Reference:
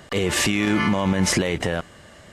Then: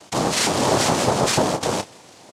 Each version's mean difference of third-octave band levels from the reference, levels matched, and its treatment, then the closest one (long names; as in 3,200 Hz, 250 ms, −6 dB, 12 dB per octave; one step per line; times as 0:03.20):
7.0 dB: dynamic equaliser 730 Hz, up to +4 dB, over −37 dBFS, Q 0.75
cochlear-implant simulation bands 2
double-tracking delay 30 ms −11.5 dB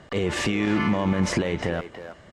3.0 dB: low-pass filter 7,900 Hz 12 dB per octave
high-shelf EQ 2,500 Hz −7.5 dB
far-end echo of a speakerphone 320 ms, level −9 dB
level −2 dB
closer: second